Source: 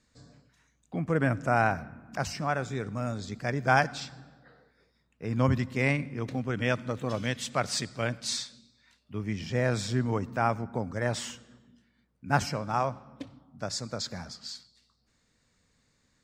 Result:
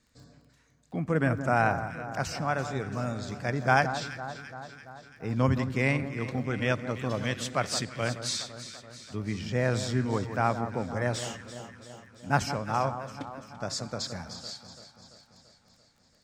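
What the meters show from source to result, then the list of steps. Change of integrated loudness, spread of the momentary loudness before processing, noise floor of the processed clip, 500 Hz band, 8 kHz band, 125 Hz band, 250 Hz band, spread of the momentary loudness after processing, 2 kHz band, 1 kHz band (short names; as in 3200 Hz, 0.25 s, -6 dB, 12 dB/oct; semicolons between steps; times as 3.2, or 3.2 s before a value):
0.0 dB, 15 LU, -64 dBFS, +0.5 dB, +0.5 dB, +0.5 dB, +0.5 dB, 17 LU, +0.5 dB, +0.5 dB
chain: vibrato 2 Hz 7.3 cents; echo with dull and thin repeats by turns 0.169 s, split 1500 Hz, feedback 77%, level -10 dB; crackle 17/s -51 dBFS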